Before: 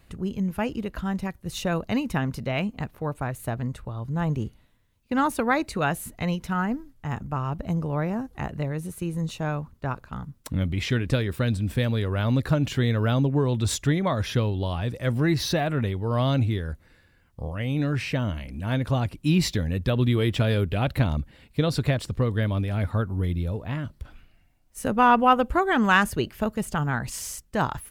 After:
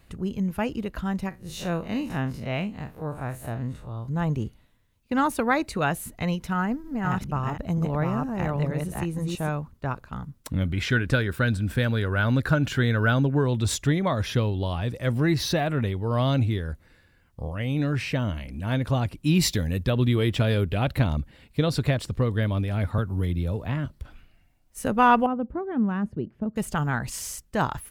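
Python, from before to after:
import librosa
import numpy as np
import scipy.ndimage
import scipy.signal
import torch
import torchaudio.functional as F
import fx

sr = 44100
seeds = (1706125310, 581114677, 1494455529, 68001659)

y = fx.spec_blur(x, sr, span_ms=84.0, at=(1.29, 4.08))
y = fx.reverse_delay(y, sr, ms=469, wet_db=-2, at=(6.37, 9.49))
y = fx.peak_eq(y, sr, hz=1500.0, db=12.0, octaves=0.29, at=(10.65, 13.47))
y = fx.high_shelf(y, sr, hz=6000.0, db=9.0, at=(19.35, 19.83))
y = fx.band_squash(y, sr, depth_pct=70, at=(22.98, 23.86))
y = fx.bandpass_q(y, sr, hz=200.0, q=1.2, at=(25.26, 26.56))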